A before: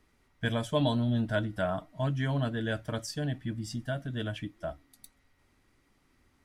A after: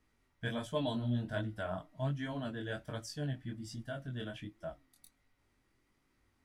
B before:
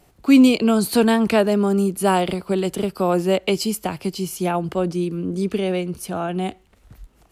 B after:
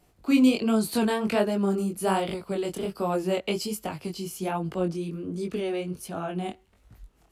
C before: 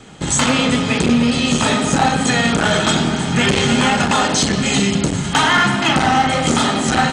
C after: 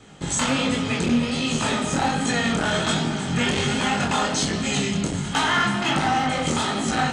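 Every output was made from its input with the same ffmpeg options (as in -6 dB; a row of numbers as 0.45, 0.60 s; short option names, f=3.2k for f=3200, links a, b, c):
-af "flanger=delay=18:depth=6.6:speed=1.3,volume=-4dB"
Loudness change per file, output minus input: -7.0, -7.5, -7.0 LU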